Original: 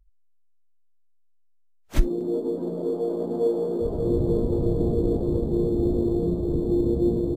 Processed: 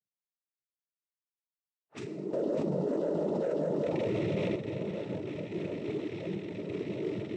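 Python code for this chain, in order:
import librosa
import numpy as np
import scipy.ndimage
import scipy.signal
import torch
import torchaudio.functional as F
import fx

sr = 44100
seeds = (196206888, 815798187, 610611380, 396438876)

p1 = fx.rattle_buzz(x, sr, strikes_db=-26.0, level_db=-25.0)
p2 = fx.high_shelf(p1, sr, hz=5400.0, db=5.0)
p3 = fx.doubler(p2, sr, ms=45.0, db=-6.5)
p4 = np.clip(p3, -10.0 ** (-23.5 / 20.0), 10.0 ** (-23.5 / 20.0))
p5 = p3 + (p4 * 10.0 ** (-5.5 / 20.0))
p6 = fx.env_lowpass(p5, sr, base_hz=820.0, full_db=-19.0)
p7 = fx.comb_fb(p6, sr, f0_hz=180.0, decay_s=0.9, harmonics='all', damping=0.0, mix_pct=80)
p8 = p7 + fx.echo_single(p7, sr, ms=598, db=-16.5, dry=0)
p9 = fx.noise_vocoder(p8, sr, seeds[0], bands=12)
p10 = fx.env_flatten(p9, sr, amount_pct=100, at=(2.33, 4.56))
y = p10 * 10.0 ** (-3.0 / 20.0)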